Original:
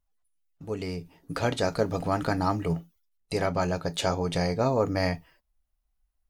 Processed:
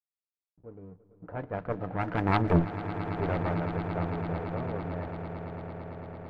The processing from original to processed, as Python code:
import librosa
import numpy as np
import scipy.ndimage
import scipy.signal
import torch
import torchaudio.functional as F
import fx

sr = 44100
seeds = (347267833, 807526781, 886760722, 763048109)

p1 = x + 0.5 * 10.0 ** (-27.5 / 20.0) * np.diff(np.sign(x), prepend=np.sign(x[:1]))
p2 = fx.doppler_pass(p1, sr, speed_mps=20, closest_m=4.1, pass_at_s=2.64)
p3 = scipy.signal.sosfilt(scipy.signal.butter(4, 1900.0, 'lowpass', fs=sr, output='sos'), p2)
p4 = fx.cheby_harmonics(p3, sr, harmonics=(4,), levels_db=(-9,), full_scale_db=-17.0)
p5 = fx.rider(p4, sr, range_db=3, speed_s=0.5)
p6 = p4 + (p5 * librosa.db_to_amplitude(-1.0))
p7 = fx.backlash(p6, sr, play_db=-49.0)
p8 = fx.env_lowpass(p7, sr, base_hz=680.0, full_db=-24.0)
y = fx.echo_swell(p8, sr, ms=112, loudest=8, wet_db=-15.5)